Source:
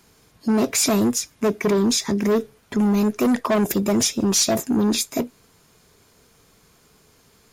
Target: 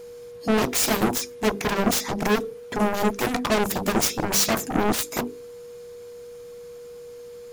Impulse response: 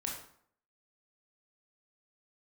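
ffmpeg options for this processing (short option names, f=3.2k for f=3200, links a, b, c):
-af "bandreject=f=50:t=h:w=6,bandreject=f=100:t=h:w=6,bandreject=f=150:t=h:w=6,bandreject=f=200:t=h:w=6,bandreject=f=250:t=h:w=6,bandreject=f=300:t=h:w=6,bandreject=f=350:t=h:w=6,bandreject=f=400:t=h:w=6,bandreject=f=450:t=h:w=6,aeval=exprs='0.355*(cos(1*acos(clip(val(0)/0.355,-1,1)))-cos(1*PI/2))+0.158*(cos(7*acos(clip(val(0)/0.355,-1,1)))-cos(7*PI/2))':c=same,aeval=exprs='val(0)+0.02*sin(2*PI*480*n/s)':c=same,volume=-4dB"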